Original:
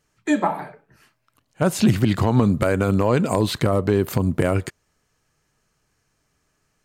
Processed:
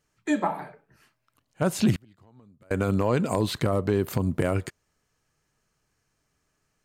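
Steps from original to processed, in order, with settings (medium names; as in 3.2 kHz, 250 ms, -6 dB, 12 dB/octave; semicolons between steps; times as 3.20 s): 1.93–2.71 s: inverted gate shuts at -15 dBFS, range -32 dB; trim -5 dB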